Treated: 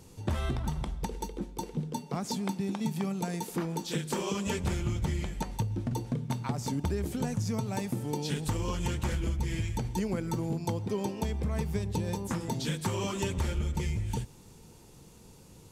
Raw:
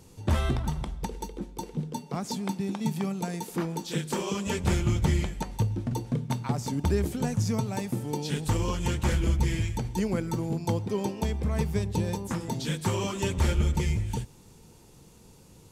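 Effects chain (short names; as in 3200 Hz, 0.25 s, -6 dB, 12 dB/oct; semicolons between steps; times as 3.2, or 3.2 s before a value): compressor, threshold -27 dBFS, peak gain reduction 8 dB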